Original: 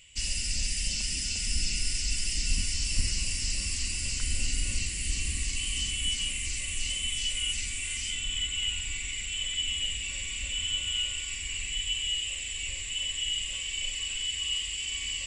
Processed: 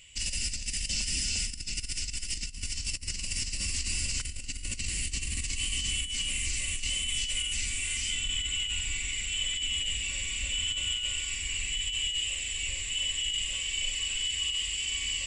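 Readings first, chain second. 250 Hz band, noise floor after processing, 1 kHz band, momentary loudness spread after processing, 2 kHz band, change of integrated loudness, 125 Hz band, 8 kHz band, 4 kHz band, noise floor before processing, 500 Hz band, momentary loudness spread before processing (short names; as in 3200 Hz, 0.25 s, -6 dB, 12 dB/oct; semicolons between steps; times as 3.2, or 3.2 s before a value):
-1.5 dB, -39 dBFS, +0.5 dB, 5 LU, +0.5 dB, -0.5 dB, -2.5 dB, 0.0 dB, 0.0 dB, -36 dBFS, 0.0 dB, 3 LU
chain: negative-ratio compressor -31 dBFS, ratio -0.5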